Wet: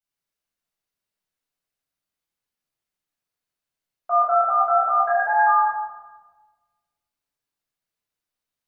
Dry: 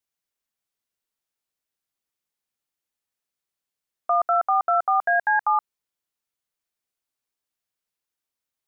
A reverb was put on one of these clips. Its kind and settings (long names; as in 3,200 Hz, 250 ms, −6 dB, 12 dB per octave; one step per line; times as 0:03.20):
rectangular room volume 1,000 cubic metres, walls mixed, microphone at 7.4 metres
level −11.5 dB